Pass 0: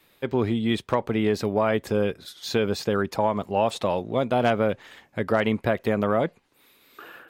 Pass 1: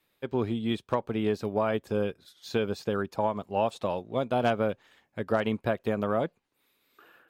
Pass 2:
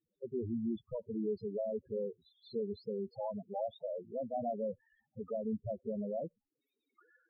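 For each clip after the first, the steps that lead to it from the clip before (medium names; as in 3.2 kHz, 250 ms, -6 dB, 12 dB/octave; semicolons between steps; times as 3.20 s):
dynamic bell 2 kHz, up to -7 dB, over -52 dBFS, Q 6.2; upward expansion 1.5:1, over -38 dBFS; trim -3 dB
in parallel at -11.5 dB: sample-rate reducer 1.8 kHz, jitter 0%; on the sum: saturation -23.5 dBFS, distortion -10 dB; loudest bins only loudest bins 4; trim -4.5 dB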